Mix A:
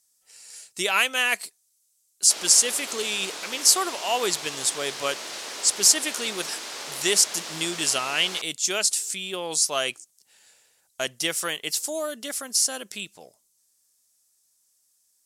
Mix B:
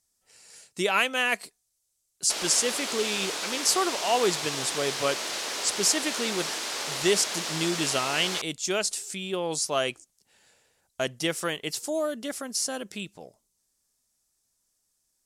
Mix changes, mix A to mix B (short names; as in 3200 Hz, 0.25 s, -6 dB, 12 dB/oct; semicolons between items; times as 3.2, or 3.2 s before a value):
speech: add tilt -2.5 dB/oct; background +3.5 dB